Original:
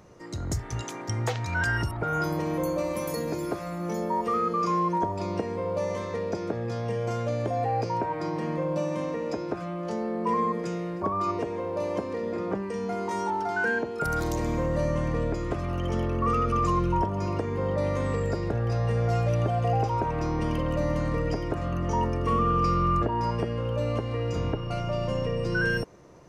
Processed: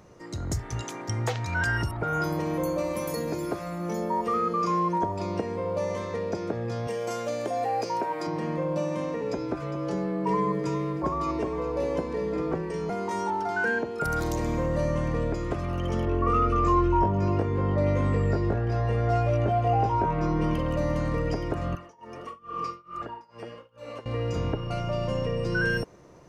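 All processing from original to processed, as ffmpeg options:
-filter_complex "[0:a]asettb=1/sr,asplit=3[a][b][c];[a]atrim=end=6.874[d];[b]atrim=start=6.87:end=8.27,asetpts=PTS-STARTPTS,afade=t=in:d=0.004:c=qsin,afade=t=out:st=1.396:d=0.004:c=qsin,highpass=250,aemphasis=mode=production:type=50kf[e];[c]atrim=start=8.266[f];[d][e]acrossfade=d=0.004:c1=hsin:c2=qsin[g];[g][f]acrossfade=d=0.004:c1=qsin:c2=hsin,asettb=1/sr,asplit=3[h][i][j];[h]atrim=end=9.214[k];[i]atrim=start=9.21:end=12.9,asetpts=PTS-STARTPTS,afade=t=in:d=0.004:c=qsin,afade=t=out:st=3.686:d=0.004:c=qsin,afreqshift=-31,asplit=2[l][m];[m]adelay=16,volume=-12dB[n];[l][n]amix=inputs=2:normalize=0,atrim=end_sample=162729,aecho=1:1:406:0.282,atrim=end_sample=162729[o];[j]atrim=start=12.896[p];[k][o]acrossfade=d=0.004:c1=hsin:c2=qsin[q];[q][p]acrossfade=d=0.004:c1=qsin:c2=hsin,asettb=1/sr,asplit=3[r][s][t];[r]atrim=end=16.054[u];[s]atrim=start=16.05:end=20.55,asetpts=PTS-STARTPTS,afade=t=in:d=0.004:c=qsin,afade=t=out:st=4.496:d=0.004:c=qsin,lowpass=f=2.8k:p=1,asplit=2[v][w];[w]adelay=20,volume=-2dB[x];[v][x]amix=inputs=2:normalize=0,atrim=end_sample=198450[y];[t]atrim=start=20.546[z];[u][y]acrossfade=d=0.004:c1=hsin:c2=qsin[aa];[aa][z]acrossfade=d=0.004:c1=qsin:c2=hsin,asettb=1/sr,asplit=3[ab][ac][ad];[ab]atrim=end=21.754[ae];[ac]atrim=start=21.75:end=24.06,asetpts=PTS-STARTPTS,afade=t=in:d=0.004:c=qsin,afade=t=out:st=2.306:d=0.004:c=qsin,highpass=f=650:p=1,flanger=delay=0.6:depth=8.4:regen=38:speed=1.5:shape=sinusoidal,tremolo=f=2.3:d=0.96[af];[ad]atrim=start=24.056[ag];[ae][af]acrossfade=d=0.004:c1=hsin:c2=qsin[ah];[ah][ag]acrossfade=d=0.004:c1=qsin:c2=hsin"

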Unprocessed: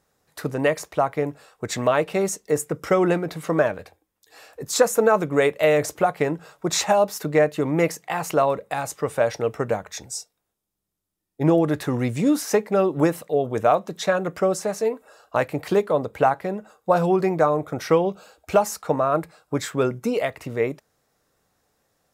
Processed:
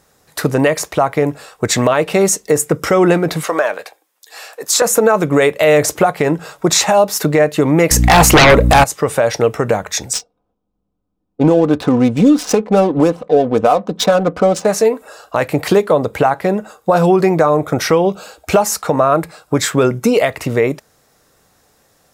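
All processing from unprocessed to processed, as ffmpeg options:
-filter_complex "[0:a]asettb=1/sr,asplit=3[a][b][c];[a]atrim=end=3.434[d];[b]atrim=start=3.43:end=4.82,asetpts=PTS-STARTPTS,afade=t=in:d=0.004:c=qsin,afade=t=out:st=1.386:d=0.004:c=qsin,highpass=580,acompressor=threshold=-26dB:ratio=2:attack=3.2:release=140:knee=1:detection=peak[e];[c]atrim=start=4.816[f];[d][e]acrossfade=d=0.004:c1=hsin:c2=qsin[g];[g][f]acrossfade=d=0.004:c1=qsin:c2=hsin,asettb=1/sr,asplit=3[h][i][j];[h]atrim=end=7.914[k];[i]atrim=start=7.91:end=8.84,asetpts=PTS-STARTPTS,afade=t=in:d=0.004:c=qsin,afade=t=out:st=0.926:d=0.004:c=qsin,aeval=exprs='val(0)+0.0178*(sin(2*PI*60*n/s)+sin(2*PI*2*60*n/s)/2+sin(2*PI*3*60*n/s)/3+sin(2*PI*4*60*n/s)/4+sin(2*PI*5*60*n/s)/5)':c=same,aeval=exprs='0.422*sin(PI/2*4.47*val(0)/0.422)':c=same[l];[j]atrim=start=8.836[m];[k][l]acrossfade=d=0.004:c1=hsin:c2=qsin[n];[n][m]acrossfade=d=0.004:c1=qsin:c2=hsin,asettb=1/sr,asplit=3[o][p][q];[o]atrim=end=10.134[r];[p]atrim=start=10.13:end=14.65,asetpts=PTS-STARTPTS,afade=t=in:d=0.004:c=qsin,afade=t=out:st=4.516:d=0.004:c=qsin,equalizer=f=1.9k:w=3.1:g=-14,adynamicsmooth=sensitivity=7:basefreq=1.2k,aecho=1:1:4:0.5,atrim=end_sample=199332[s];[q]atrim=start=14.646[t];[r][s]acrossfade=d=0.004:c1=hsin:c2=qsin[u];[u][t]acrossfade=d=0.004:c1=qsin:c2=hsin,equalizer=f=8.1k:w=0.36:g=2.5,acompressor=threshold=-23dB:ratio=2,alimiter=level_in=14dB:limit=-1dB:release=50:level=0:latency=1,volume=-1dB"

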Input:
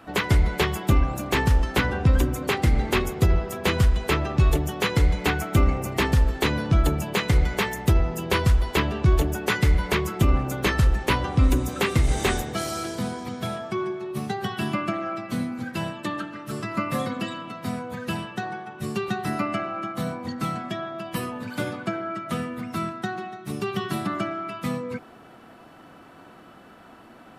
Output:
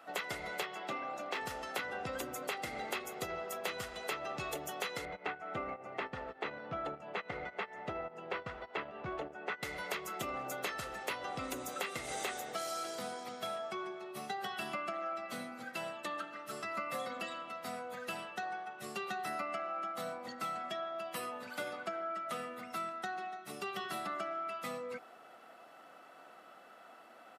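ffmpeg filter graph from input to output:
-filter_complex "[0:a]asettb=1/sr,asplit=3[a][b][c];[a]atrim=end=0.634[d];[b]atrim=start=0.63:end=1.41,asetpts=PTS-STARTPTS,afade=t=in:d=0.004:c=qsin,afade=t=out:st=0.776:d=0.004:c=qsin,acrossover=split=160 5400:gain=0.0891 1 0.0708[e][f][g];[e][f][g]amix=inputs=3:normalize=0,volume=17.5dB,asoftclip=hard,volume=-17.5dB[h];[c]atrim=start=1.406[i];[d][h]acrossfade=d=0.004:c1=hsin:c2=qsin[j];[j][i]acrossfade=d=0.004:c1=qsin:c2=hsin,asettb=1/sr,asplit=3[k][l][m];[k]atrim=end=5.054[n];[l]atrim=start=5.05:end=9.63,asetpts=PTS-STARTPTS,afade=t=in:d=0.004:c=qsin,afade=t=out:st=4.576:d=0.004:c=qsin,agate=range=-18dB:threshold=-24dB:ratio=16:release=100:detection=peak,lowpass=2.1k,acompressor=mode=upward:threshold=-19dB:ratio=2.5:attack=3.2:release=140:knee=2.83:detection=peak[o];[m]atrim=start=9.626[p];[n][o]acrossfade=d=0.004:c1=hsin:c2=qsin[q];[q][p]acrossfade=d=0.004:c1=qsin:c2=hsin,highpass=420,aecho=1:1:1.5:0.36,acompressor=threshold=-28dB:ratio=6,volume=-7dB"

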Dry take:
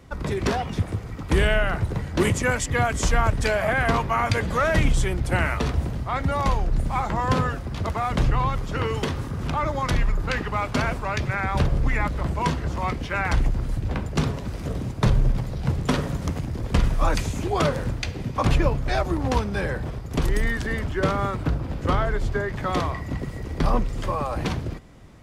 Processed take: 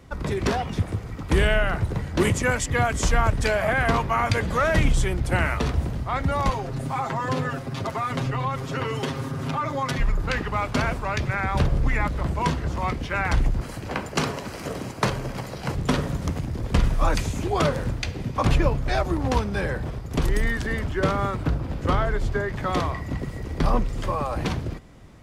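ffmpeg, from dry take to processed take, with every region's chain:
-filter_complex "[0:a]asettb=1/sr,asplit=3[a][b][c];[a]atrim=end=6.504[d];[b]atrim=start=6.5:end=10,asetpts=PTS-STARTPTS,afade=t=in:d=0.004:c=qsin,afade=t=out:st=3.496:d=0.004:c=qsin,highpass=120,aecho=1:1:7.5:0.95,atrim=end_sample=154350,acompressor=threshold=-25dB:ratio=2:attack=3.2:release=140:knee=1:detection=peak[e];[c]atrim=start=9.996[f];[d][e]acrossfade=d=0.004:c1=hsin:c2=qsin[g];[g][f]acrossfade=d=0.004:c1=qsin:c2=hsin,asettb=1/sr,asplit=3[h][i][j];[h]atrim=end=13.614[k];[i]atrim=start=13.61:end=15.75,asetpts=PTS-STARTPTS,afade=t=in:d=0.004:c=qsin,afade=t=out:st=2.136:d=0.004:c=qsin,bandreject=f=3.6k:w=10,acontrast=58,highpass=f=530:p=1[l];[j]atrim=start=15.746[m];[k][l]acrossfade=d=0.004:c1=hsin:c2=qsin[n];[n][m]acrossfade=d=0.004:c1=qsin:c2=hsin"

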